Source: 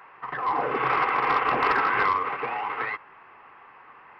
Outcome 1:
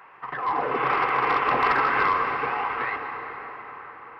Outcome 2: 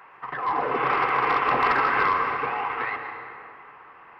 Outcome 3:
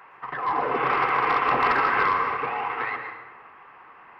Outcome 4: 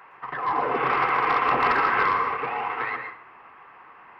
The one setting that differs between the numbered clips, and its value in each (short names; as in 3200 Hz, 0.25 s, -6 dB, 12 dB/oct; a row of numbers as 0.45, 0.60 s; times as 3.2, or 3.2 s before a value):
plate-style reverb, RT60: 5.3, 2.5, 1.2, 0.57 s